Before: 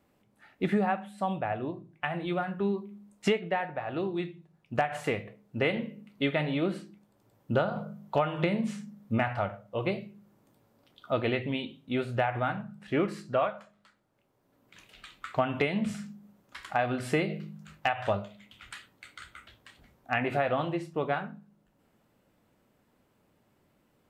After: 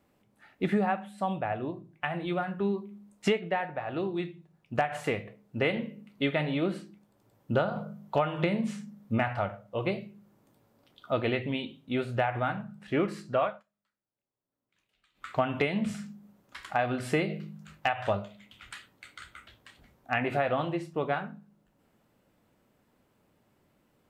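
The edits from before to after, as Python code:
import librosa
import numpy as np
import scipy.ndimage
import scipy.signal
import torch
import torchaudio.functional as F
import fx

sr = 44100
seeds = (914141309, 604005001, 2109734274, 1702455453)

y = fx.edit(x, sr, fx.fade_down_up(start_s=13.44, length_s=1.89, db=-21.5, fade_s=0.19, curve='qsin'), tone=tone)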